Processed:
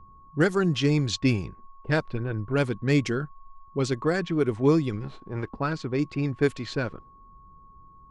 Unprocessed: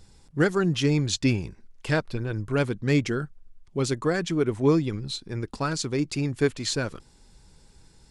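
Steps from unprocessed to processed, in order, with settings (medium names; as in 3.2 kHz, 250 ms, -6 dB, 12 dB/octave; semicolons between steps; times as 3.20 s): 5.00–5.47 s: formants flattened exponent 0.6; level-controlled noise filter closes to 300 Hz, open at -19 dBFS; whistle 1.1 kHz -51 dBFS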